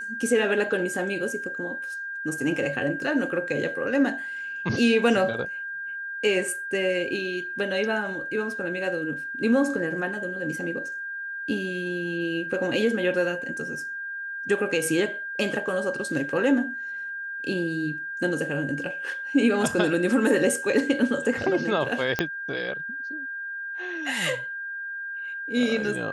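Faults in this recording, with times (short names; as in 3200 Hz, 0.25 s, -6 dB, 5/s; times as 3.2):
tone 1600 Hz -31 dBFS
22.19 pop -9 dBFS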